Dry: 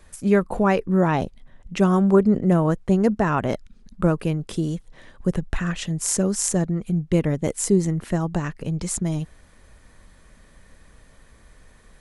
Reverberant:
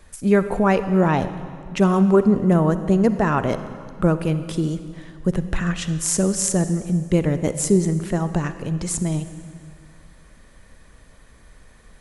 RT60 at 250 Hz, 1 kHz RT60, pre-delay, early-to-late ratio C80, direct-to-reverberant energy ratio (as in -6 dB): 2.1 s, 2.0 s, 40 ms, 12.5 dB, 11.0 dB